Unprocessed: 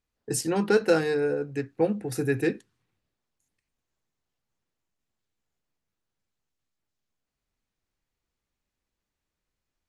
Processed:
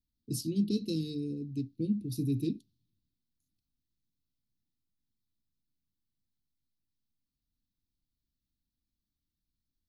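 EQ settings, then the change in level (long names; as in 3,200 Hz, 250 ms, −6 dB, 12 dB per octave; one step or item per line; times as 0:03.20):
elliptic band-stop filter 280–3,900 Hz, stop band 50 dB
parametric band 7,700 Hz −15 dB 0.72 octaves
0.0 dB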